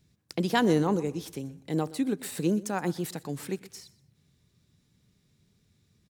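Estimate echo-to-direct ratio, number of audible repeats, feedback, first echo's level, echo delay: -19.0 dB, 2, 21%, -19.0 dB, 123 ms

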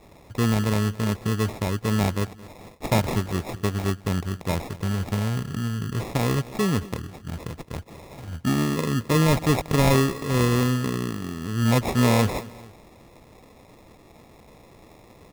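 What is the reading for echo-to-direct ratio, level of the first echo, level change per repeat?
-18.5 dB, -19.5 dB, -7.0 dB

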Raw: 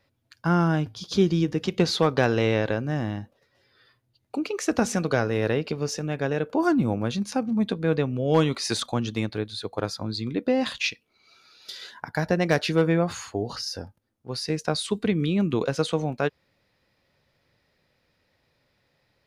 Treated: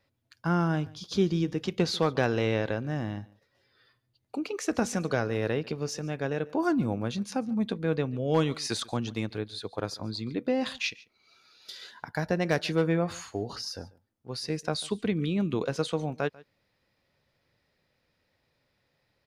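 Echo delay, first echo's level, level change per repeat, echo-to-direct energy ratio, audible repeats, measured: 143 ms, -22.5 dB, no regular repeats, -22.5 dB, 1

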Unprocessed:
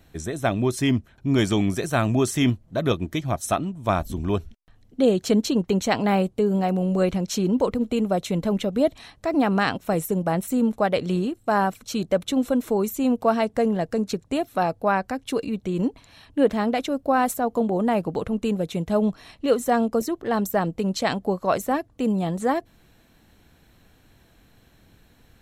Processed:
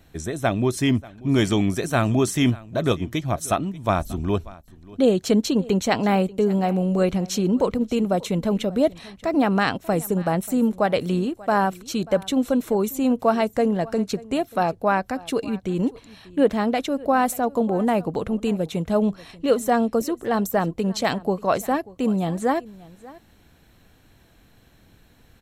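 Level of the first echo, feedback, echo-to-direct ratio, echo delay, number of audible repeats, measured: -21.0 dB, no regular repeats, -21.0 dB, 587 ms, 1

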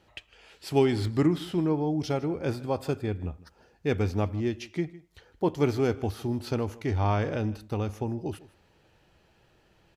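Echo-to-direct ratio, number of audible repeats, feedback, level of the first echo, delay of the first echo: -20.0 dB, 1, no regular repeats, -20.0 dB, 156 ms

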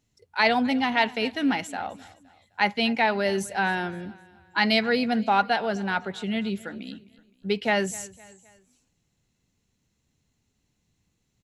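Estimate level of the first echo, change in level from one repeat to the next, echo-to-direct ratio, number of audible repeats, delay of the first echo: -21.0 dB, -7.0 dB, -20.0 dB, 3, 258 ms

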